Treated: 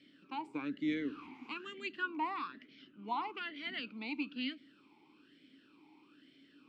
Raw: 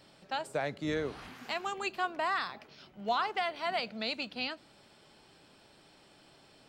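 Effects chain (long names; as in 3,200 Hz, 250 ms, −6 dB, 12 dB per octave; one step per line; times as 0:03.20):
formant filter swept between two vowels i-u 1.1 Hz
level +9 dB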